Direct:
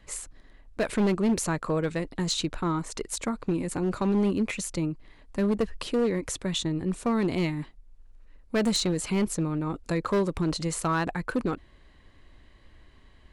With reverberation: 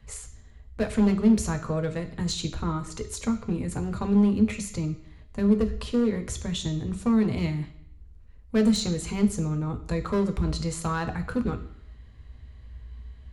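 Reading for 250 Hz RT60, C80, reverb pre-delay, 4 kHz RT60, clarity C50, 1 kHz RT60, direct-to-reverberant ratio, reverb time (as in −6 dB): 0.65 s, 14.5 dB, 3 ms, 0.70 s, 12.0 dB, 0.70 s, 5.0 dB, 0.70 s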